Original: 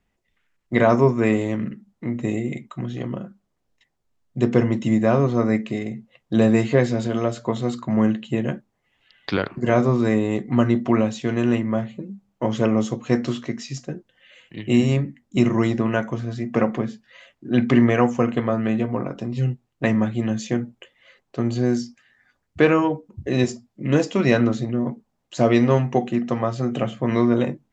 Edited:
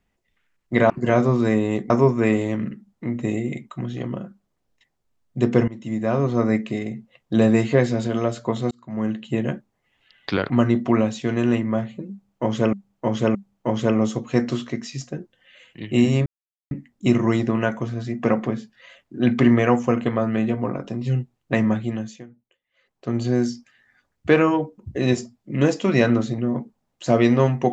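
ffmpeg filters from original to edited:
-filter_complex "[0:a]asplit=11[a][b][c][d][e][f][g][h][i][j][k];[a]atrim=end=0.902[l];[b]atrim=start=9.498:end=10.502[m];[c]atrim=start=0.898:end=4.68,asetpts=PTS-STARTPTS,afade=t=out:st=3.778:d=0.004:c=hsin:silence=0.11885[n];[d]atrim=start=4.68:end=7.71,asetpts=PTS-STARTPTS,afade=t=in:d=0.72:silence=0.11885,afade=t=out:st=3.026:d=0.004:c=hsin[o];[e]atrim=start=7.71:end=9.502,asetpts=PTS-STARTPTS,afade=t=in:d=0.65[p];[f]atrim=start=10.498:end=12.732[q];[g]atrim=start=12.108:end=12.732[r];[h]atrim=start=12.108:end=15.02,asetpts=PTS-STARTPTS,afade=t=out:st=2.908:d=0.004:c=hsin,apad=pad_dur=0.45[s];[i]atrim=start=15.02:end=20.56,asetpts=PTS-STARTPTS,afade=t=in:d=0.004:c=hsin,afade=t=out:st=5.05:d=0.49:silence=0.0891251[t];[j]atrim=start=20.56:end=21.03,asetpts=PTS-STARTPTS,volume=-21dB[u];[k]atrim=start=21.03,asetpts=PTS-STARTPTS,afade=t=in:d=0.49:silence=0.0891251[v];[l][m]acrossfade=d=0.004:c1=hsin:c2=hsin[w];[n][o][p]concat=n=3:v=0:a=1[x];[w][x]acrossfade=d=0.004:c1=hsin:c2=hsin[y];[y][q]acrossfade=d=0.004:c1=hsin:c2=hsin[z];[z][r]acrossfade=d=0.004:c1=hsin:c2=hsin[aa];[s][t][u][v]concat=n=4:v=0:a=1[ab];[aa][ab]acrossfade=d=0.004:c1=hsin:c2=hsin"

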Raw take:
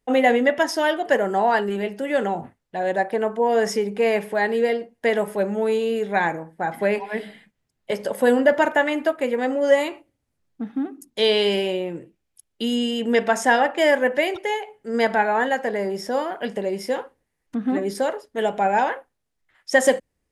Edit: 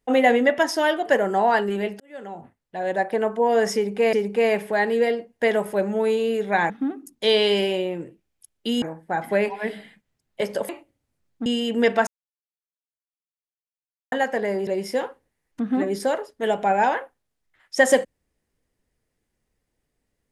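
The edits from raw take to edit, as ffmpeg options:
-filter_complex "[0:a]asplit=10[a][b][c][d][e][f][g][h][i][j];[a]atrim=end=2,asetpts=PTS-STARTPTS,afade=t=out:st=1.996:d=0.004:c=hsin[k];[b]atrim=start=2:end=4.132,asetpts=PTS-STARTPTS,afade=t=in:d=1.14[l];[c]atrim=start=3.748:end=6.322[m];[d]atrim=start=10.648:end=12.772[n];[e]atrim=start=6.318:end=8.192[o];[f]atrim=start=9.878:end=10.652[p];[g]atrim=start=12.768:end=13.38,asetpts=PTS-STARTPTS,afade=t=out:st=0.608:d=0.004:c=hsin[q];[h]atrim=start=13.38:end=15.43,asetpts=PTS-STARTPTS,volume=0[r];[i]atrim=start=15.43:end=15.982,asetpts=PTS-STARTPTS,afade=t=in:d=0.004:c=hsin[s];[j]atrim=start=16.618[t];[k][l]concat=n=2:v=0:a=1[u];[u][m]acrossfade=d=0.004:c1=hsin:c2=hsin[v];[v][n]acrossfade=d=0.004:c1=hsin:c2=hsin[w];[w][o]acrossfade=d=0.004:c1=hsin:c2=hsin[x];[x][p]acrossfade=d=0.004:c1=hsin:c2=hsin[y];[q][r][s]concat=n=3:v=0:a=1[z];[y][z]acrossfade=d=0.004:c1=hsin:c2=hsin[aa];[aa][t]acrossfade=d=0.004:c1=hsin:c2=hsin"

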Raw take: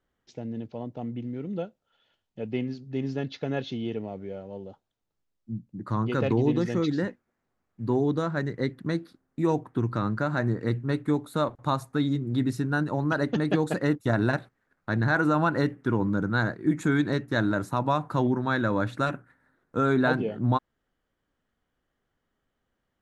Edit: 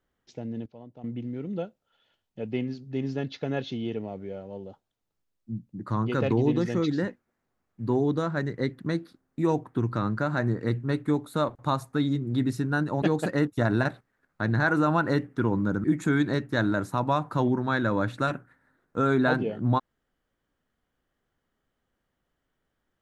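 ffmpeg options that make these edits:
-filter_complex "[0:a]asplit=5[a][b][c][d][e];[a]atrim=end=0.662[f];[b]atrim=start=0.658:end=1.042,asetpts=PTS-STARTPTS,volume=-10.5dB[g];[c]atrim=start=1.038:end=13.022[h];[d]atrim=start=13.498:end=16.322[i];[e]atrim=start=16.628[j];[f][g]acrossfade=d=0.004:c1=hsin:c2=hsin[k];[k][h]acrossfade=d=0.004:c1=hsin:c2=hsin[l];[l][i]acrossfade=d=0.004:c1=hsin:c2=hsin[m];[m][j]acrossfade=d=0.004:c1=hsin:c2=hsin"

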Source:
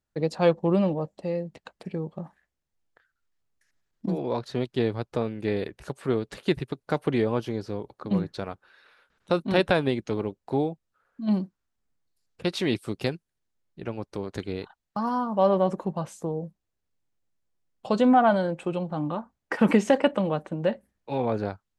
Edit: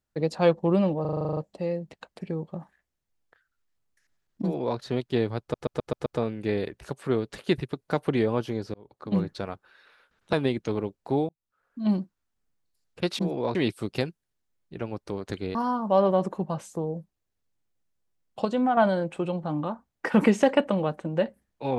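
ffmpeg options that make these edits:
-filter_complex "[0:a]asplit=23[a][b][c][d][e][f][g][h][i][j][k][l][m][n][o][p][q][r][s][t][u][v][w];[a]atrim=end=1.052[x];[b]atrim=start=1.008:end=1.052[y];[c]atrim=start=1.008:end=1.052[z];[d]atrim=start=1.008:end=1.052[aa];[e]atrim=start=1.008:end=1.052[ab];[f]atrim=start=1.008:end=1.052[ac];[g]atrim=start=1.008:end=1.052[ad];[h]atrim=start=1.008:end=1.052[ae];[i]atrim=start=1.008:end=1.052[af];[j]atrim=start=1.008:end=5.182[ag];[k]atrim=start=5.048:end=5.182[ah];[l]atrim=start=5.048:end=5.182[ai];[m]atrim=start=5.048:end=5.182[aj];[n]atrim=start=5.048:end=5.182[ak];[o]atrim=start=5.048:end=7.73,asetpts=PTS-STARTPTS,afade=t=out:st=2.678:d=0.004:c=hsin[al];[p]atrim=start=7.73:end=9.322,asetpts=PTS-STARTPTS,afade=t=in:d=0.4[am];[q]atrim=start=9.748:end=10.71,asetpts=PTS-STARTPTS,afade=t=out:st=0.958:d=0.004:c=hsin[an];[r]atrim=start=10.71:end=12.612,asetpts=PTS-STARTPTS,afade=t=in:d=0.5[ao];[s]atrim=start=4.058:end=4.422[ap];[t]atrim=start=12.608:end=14.612[aq];[u]atrim=start=15.018:end=17.922[ar];[v]atrim=start=17.918:end=18.242,asetpts=PTS-STARTPTS,volume=-5.5dB[as];[w]atrim=start=18.238[at];[x][y]acrossfade=d=0.004:c1=hsin:c2=hsin[au];[au][z]acrossfade=d=0.004:c1=hsin:c2=hsin[av];[av][aa]acrossfade=d=0.004:c1=hsin:c2=hsin[aw];[aw][ab]acrossfade=d=0.004:c1=hsin:c2=hsin[ax];[ax][ac]acrossfade=d=0.004:c1=hsin:c2=hsin[ay];[ay][ad]acrossfade=d=0.004:c1=hsin:c2=hsin[az];[az][ae]acrossfade=d=0.004:c1=hsin:c2=hsin[ba];[ba][af]acrossfade=d=0.004:c1=hsin:c2=hsin[bb];[bb][ag]acrossfade=d=0.004:c1=hsin:c2=hsin[bc];[bc][ah]acrossfade=d=0.004:c1=hsin:c2=hsin[bd];[bd][ai]acrossfade=d=0.004:c1=hsin:c2=hsin[be];[be][aj]acrossfade=d=0.004:c1=hsin:c2=hsin[bf];[bf][ak]acrossfade=d=0.004:c1=hsin:c2=hsin[bg];[al][am]concat=n=2:v=0:a=1[bh];[bg][bh]acrossfade=d=0.004:c1=hsin:c2=hsin[bi];[an][ao]concat=n=2:v=0:a=1[bj];[bi][bj]acrossfade=d=0.004:c1=hsin:c2=hsin[bk];[bk][ap]acrossfade=d=0.004:c1=hsin:c2=hsin[bl];[bl][aq]acrossfade=d=0.004:c1=hsin:c2=hsin[bm];[bm][ar]acrossfade=d=0.004:c1=hsin:c2=hsin[bn];[bn][as]acrossfade=d=0.004:c1=hsin:c2=hsin[bo];[bo][at]acrossfade=d=0.004:c1=hsin:c2=hsin"

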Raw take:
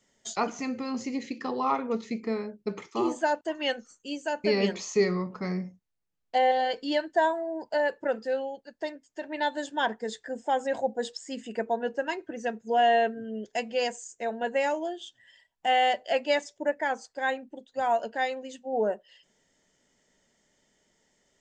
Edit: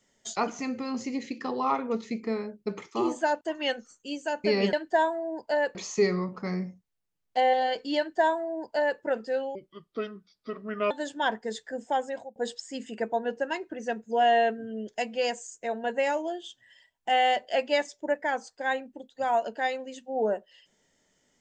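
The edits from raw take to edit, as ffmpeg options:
-filter_complex "[0:a]asplit=6[a][b][c][d][e][f];[a]atrim=end=4.732[g];[b]atrim=start=6.958:end=7.982[h];[c]atrim=start=4.728:end=8.534[i];[d]atrim=start=8.53:end=9.48,asetpts=PTS-STARTPTS,asetrate=30870,aresample=44100,atrim=end_sample=59850,asetpts=PTS-STARTPTS[j];[e]atrim=start=9.476:end=10.93,asetpts=PTS-STARTPTS,afade=t=out:st=1.014:d=0.44[k];[f]atrim=start=10.93,asetpts=PTS-STARTPTS,afade=t=in:d=0.004:c=hsin[l];[g][h]acrossfade=d=0.004:c1=hsin:c2=hsin[m];[m][i]acrossfade=d=0.004:c1=hsin:c2=hsin[n];[n][j]acrossfade=d=0.004:c1=hsin:c2=hsin[o];[k][l]concat=n=2:v=0:a=1[p];[o][p]acrossfade=d=0.004:c1=hsin:c2=hsin"

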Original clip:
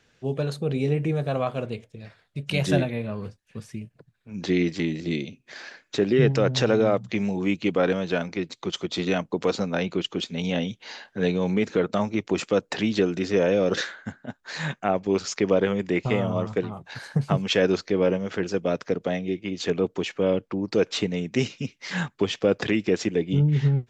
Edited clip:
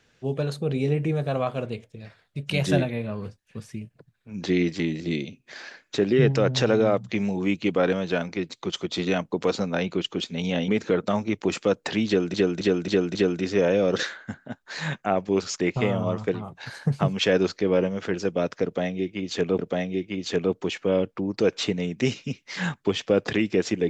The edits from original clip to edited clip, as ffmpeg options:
-filter_complex "[0:a]asplit=8[a][b][c][d][e][f][g][h];[a]atrim=end=10.682[i];[b]atrim=start=11.538:end=13.202[j];[c]atrim=start=12.928:end=13.202[k];[d]atrim=start=12.928:end=13.202[l];[e]atrim=start=12.928:end=13.202[m];[f]atrim=start=12.928:end=15.382[n];[g]atrim=start=15.888:end=19.882[o];[h]atrim=start=18.928[p];[i][j]acrossfade=d=0.004:c1=hsin:c2=hsin[q];[q][k]acrossfade=d=0.004:c1=hsin:c2=hsin[r];[r][l]acrossfade=d=0.004:c1=hsin:c2=hsin[s];[s][m]acrossfade=d=0.004:c1=hsin:c2=hsin[t];[t][n]acrossfade=d=0.004:c1=hsin:c2=hsin[u];[u][o]acrossfade=d=0.004:c1=hsin:c2=hsin[v];[v][p]acrossfade=d=0.004:c1=hsin:c2=hsin"

